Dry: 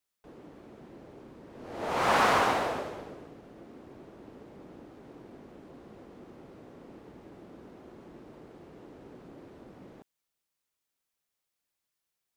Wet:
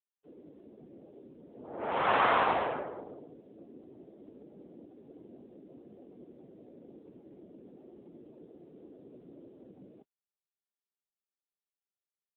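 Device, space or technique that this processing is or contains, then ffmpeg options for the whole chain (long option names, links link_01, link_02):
mobile call with aggressive noise cancelling: -af "highpass=frequency=140:poles=1,afftdn=noise_reduction=16:noise_floor=-46" -ar 8000 -c:a libopencore_amrnb -b:a 7950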